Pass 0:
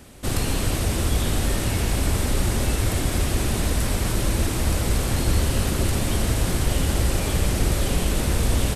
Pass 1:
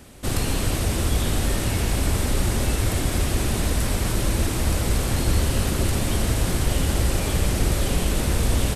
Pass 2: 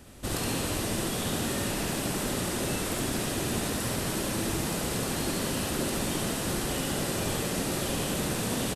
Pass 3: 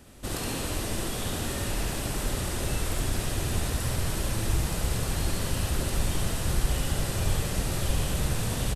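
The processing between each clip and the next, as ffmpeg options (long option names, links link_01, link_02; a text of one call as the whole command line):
ffmpeg -i in.wav -af anull out.wav
ffmpeg -i in.wav -af "afftfilt=real='re*lt(hypot(re,im),0.501)':imag='im*lt(hypot(re,im),0.501)':win_size=1024:overlap=0.75,bandreject=frequency=2200:width=19,aecho=1:1:70:0.708,volume=-5dB" out.wav
ffmpeg -i in.wav -af "asubboost=boost=9:cutoff=82,volume=-1.5dB" out.wav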